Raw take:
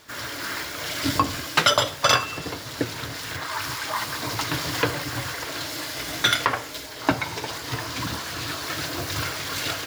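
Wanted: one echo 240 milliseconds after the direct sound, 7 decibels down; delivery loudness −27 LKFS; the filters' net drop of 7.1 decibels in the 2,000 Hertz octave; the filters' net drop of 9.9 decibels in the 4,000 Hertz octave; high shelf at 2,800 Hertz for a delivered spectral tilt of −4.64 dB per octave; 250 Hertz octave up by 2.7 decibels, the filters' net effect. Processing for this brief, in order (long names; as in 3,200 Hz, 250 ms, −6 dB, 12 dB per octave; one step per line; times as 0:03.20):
parametric band 250 Hz +3.5 dB
parametric band 2,000 Hz −6 dB
high-shelf EQ 2,800 Hz −6.5 dB
parametric band 4,000 Hz −5.5 dB
single-tap delay 240 ms −7 dB
level +2 dB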